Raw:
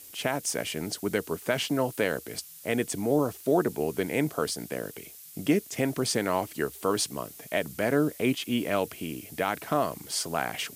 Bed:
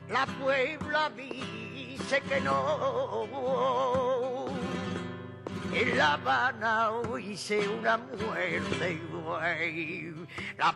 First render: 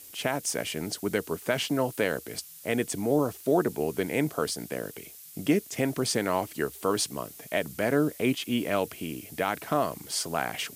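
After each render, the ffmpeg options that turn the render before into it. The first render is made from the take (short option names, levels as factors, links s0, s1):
-af anull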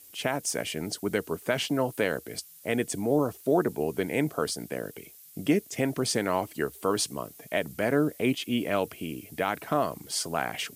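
-af "afftdn=nr=6:nf=-48"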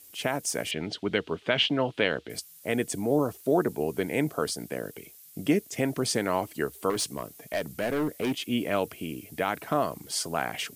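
-filter_complex "[0:a]asettb=1/sr,asplit=3[s0][s1][s2];[s0]atrim=end=0.714[s3];[s1]atrim=start=0.71:end=2.3,asetpts=PTS-STARTPTS,afade=t=in:d=0.004:c=qsin,afade=t=out:st=1.586:d=0.004:c=qsin,lowpass=f=3300:t=q:w=2.9[s4];[s2]atrim=start=2.296[s5];[s3][s4]acrossfade=d=0.004:c1=hsin:c2=qsin[s6];[s6][s5]acrossfade=d=0.004:c1=qsin:c2=hsin,asettb=1/sr,asplit=3[s7][s8][s9];[s7]atrim=end=6.904[s10];[s8]atrim=start=6.9:end=8.46,asetpts=PTS-STARTPTS,afade=t=in:d=0.004:c=qsin,afade=t=out:st=1.556:d=0.004:c=qsin,volume=15,asoftclip=hard,volume=0.0668[s11];[s9]atrim=start=8.456[s12];[s10][s11]acrossfade=d=0.004:c1=hsin:c2=qsin[s13];[s13][s12]acrossfade=d=0.004:c1=qsin:c2=hsin"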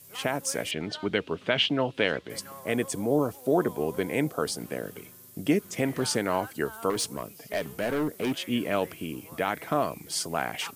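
-filter_complex "[1:a]volume=0.141[s0];[0:a][s0]amix=inputs=2:normalize=0"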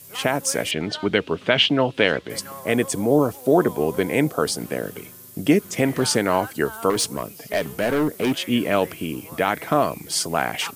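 -af "volume=2.24"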